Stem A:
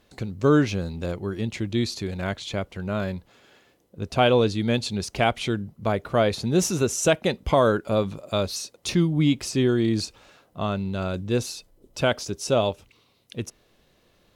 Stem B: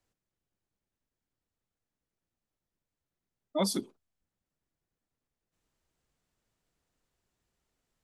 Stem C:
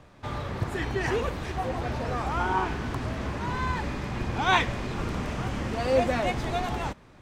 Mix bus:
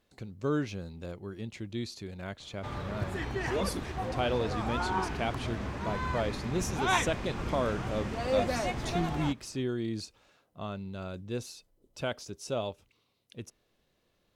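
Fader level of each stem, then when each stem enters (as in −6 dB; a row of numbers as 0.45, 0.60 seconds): −11.5, −5.5, −5.0 decibels; 0.00, 0.00, 2.40 seconds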